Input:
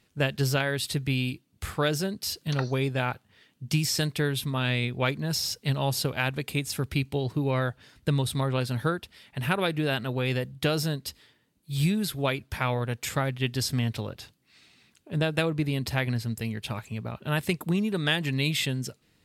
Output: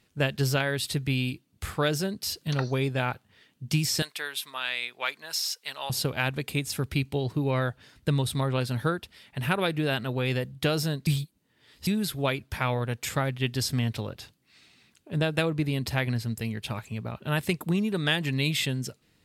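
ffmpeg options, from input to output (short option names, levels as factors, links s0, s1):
-filter_complex "[0:a]asettb=1/sr,asplit=3[s0][s1][s2];[s0]atrim=end=4.024[s3];[s1]atrim=start=4.02:end=5.9,asetpts=PTS-STARTPTS,afade=t=in:d=0.004:c=qsin,afade=t=out:st=1.876:d=0.004:c=qsin,highpass=950[s4];[s2]atrim=start=5.896[s5];[s3][s4]acrossfade=d=0.004:c1=hsin:c2=qsin[s6];[s6][s5]acrossfade=d=0.004:c1=qsin:c2=hsin,asplit=3[s7][s8][s9];[s7]atrim=end=11.072[s10];[s8]atrim=start=11.068:end=11.872,asetpts=PTS-STARTPTS,areverse[s11];[s9]atrim=start=11.868[s12];[s10][s11]acrossfade=d=0.004:c1=hsin:c2=hsin[s13];[s13][s12]acrossfade=d=0.004:c1=hsin:c2=hsin"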